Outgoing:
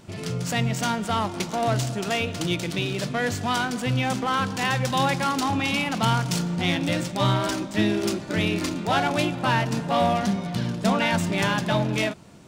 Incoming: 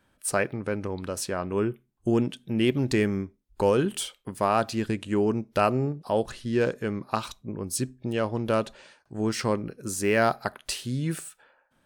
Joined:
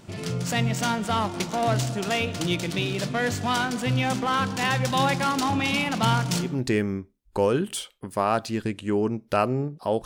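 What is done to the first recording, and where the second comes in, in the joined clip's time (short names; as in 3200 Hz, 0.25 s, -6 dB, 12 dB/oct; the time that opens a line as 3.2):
outgoing
6.49 switch to incoming from 2.73 s, crossfade 0.24 s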